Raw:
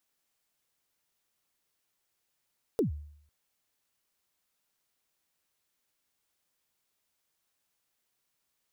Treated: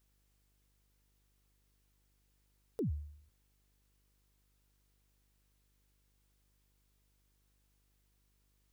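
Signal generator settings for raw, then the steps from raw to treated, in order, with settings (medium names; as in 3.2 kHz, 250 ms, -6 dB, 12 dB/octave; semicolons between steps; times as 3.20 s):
kick drum length 0.50 s, from 500 Hz, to 74 Hz, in 120 ms, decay 0.66 s, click on, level -21 dB
mains buzz 50 Hz, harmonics 10, -75 dBFS -8 dB/octave; peak limiter -31 dBFS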